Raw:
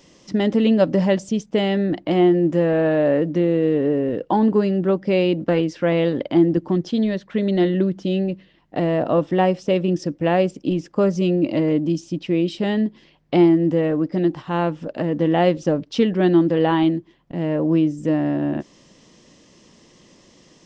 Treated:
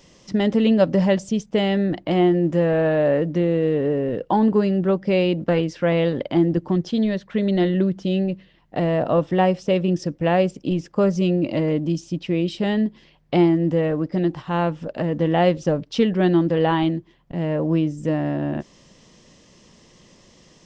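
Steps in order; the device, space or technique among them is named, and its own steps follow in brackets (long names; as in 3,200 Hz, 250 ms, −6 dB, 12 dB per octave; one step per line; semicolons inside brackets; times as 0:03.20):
low shelf boost with a cut just above (low-shelf EQ 91 Hz +6.5 dB; parametric band 300 Hz −5 dB 0.57 octaves)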